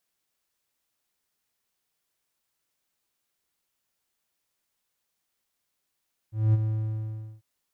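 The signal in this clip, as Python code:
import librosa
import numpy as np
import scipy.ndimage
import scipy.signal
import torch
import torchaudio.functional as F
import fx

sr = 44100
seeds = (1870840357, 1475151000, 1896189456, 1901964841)

y = fx.adsr_tone(sr, wave='triangle', hz=109.0, attack_ms=219.0, decay_ms=27.0, sustain_db=-7.5, held_s=0.32, release_ms=775.0, level_db=-14.0)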